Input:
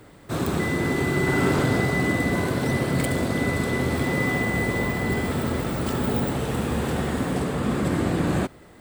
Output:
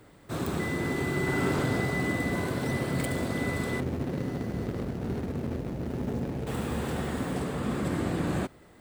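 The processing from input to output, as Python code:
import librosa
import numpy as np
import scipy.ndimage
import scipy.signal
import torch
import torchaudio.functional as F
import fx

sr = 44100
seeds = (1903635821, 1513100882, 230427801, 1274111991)

y = fx.median_filter(x, sr, points=41, at=(3.8, 6.47))
y = y * 10.0 ** (-6.0 / 20.0)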